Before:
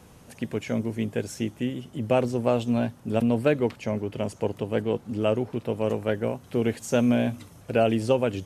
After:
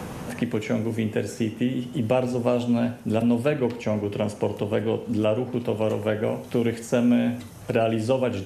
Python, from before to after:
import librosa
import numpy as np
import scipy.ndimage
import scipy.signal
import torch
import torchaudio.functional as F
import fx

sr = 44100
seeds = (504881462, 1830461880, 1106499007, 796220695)

y = fx.rev_gated(x, sr, seeds[0], gate_ms=190, shape='falling', drr_db=8.0)
y = fx.band_squash(y, sr, depth_pct=70)